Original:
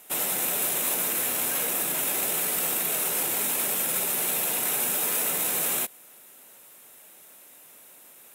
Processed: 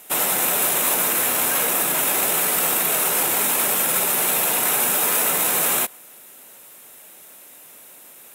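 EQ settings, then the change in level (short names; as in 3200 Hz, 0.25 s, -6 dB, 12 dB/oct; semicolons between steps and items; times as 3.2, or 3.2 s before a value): dynamic EQ 1100 Hz, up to +5 dB, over -48 dBFS, Q 0.91; +6.0 dB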